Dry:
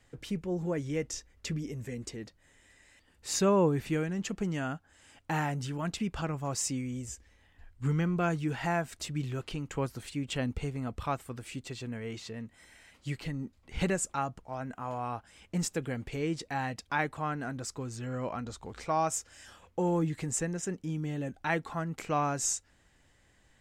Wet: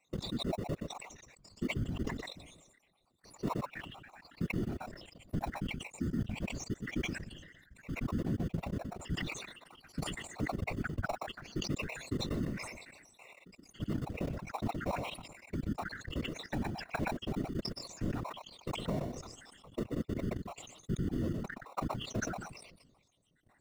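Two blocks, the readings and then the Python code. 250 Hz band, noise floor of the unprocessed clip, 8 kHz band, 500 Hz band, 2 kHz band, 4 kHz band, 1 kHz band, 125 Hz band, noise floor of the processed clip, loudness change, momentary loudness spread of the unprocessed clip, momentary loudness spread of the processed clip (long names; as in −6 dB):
−4.0 dB, −66 dBFS, −13.0 dB, −8.0 dB, −4.0 dB, −1.0 dB, −8.0 dB, −4.5 dB, −70 dBFS, −5.0 dB, 12 LU, 14 LU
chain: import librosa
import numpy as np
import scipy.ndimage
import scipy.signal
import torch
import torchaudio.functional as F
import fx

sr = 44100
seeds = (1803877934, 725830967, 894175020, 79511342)

p1 = fx.spec_dropout(x, sr, seeds[0], share_pct=80)
p2 = fx.env_lowpass_down(p1, sr, base_hz=340.0, full_db=-34.0)
p3 = fx.spec_box(p2, sr, start_s=8.51, length_s=0.43, low_hz=590.0, high_hz=9300.0, gain_db=-24)
p4 = scipy.signal.sosfilt(scipy.signal.butter(2, 49.0, 'highpass', fs=sr, output='sos'), p3)
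p5 = fx.sample_hold(p4, sr, seeds[1], rate_hz=1600.0, jitter_pct=0)
p6 = p4 + F.gain(torch.from_numpy(p5), -6.0).numpy()
p7 = fx.notch_comb(p6, sr, f0_hz=430.0)
p8 = p7 + 10.0 ** (-12.0 / 20.0) * np.pad(p7, (int(123 * sr / 1000.0), 0))[:len(p7)]
p9 = fx.level_steps(p8, sr, step_db=21)
p10 = fx.whisperise(p9, sr, seeds[2])
p11 = fx.peak_eq(p10, sr, hz=12000.0, db=-3.5, octaves=1.5)
p12 = fx.sustainer(p11, sr, db_per_s=47.0)
y = F.gain(torch.from_numpy(p12), 8.5).numpy()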